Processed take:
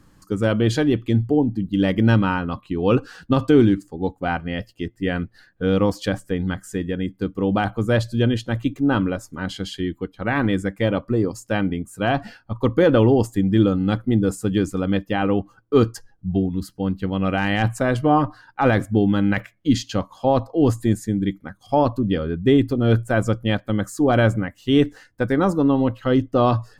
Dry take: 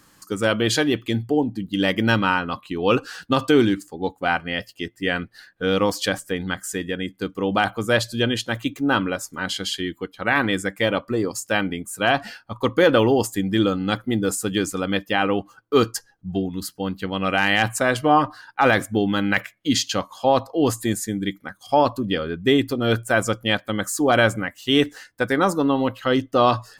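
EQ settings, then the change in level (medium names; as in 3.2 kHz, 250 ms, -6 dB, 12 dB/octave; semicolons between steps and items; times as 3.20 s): tilt EQ -3.5 dB/octave; treble shelf 4 kHz +5.5 dB; -3.5 dB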